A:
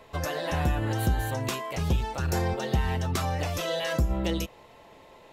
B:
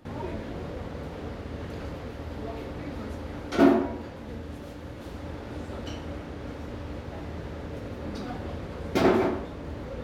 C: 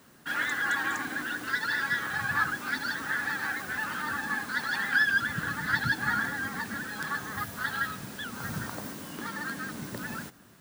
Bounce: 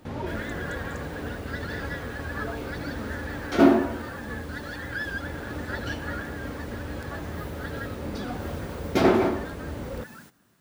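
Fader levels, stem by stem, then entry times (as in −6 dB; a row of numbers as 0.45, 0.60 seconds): muted, +2.0 dB, −8.5 dB; muted, 0.00 s, 0.00 s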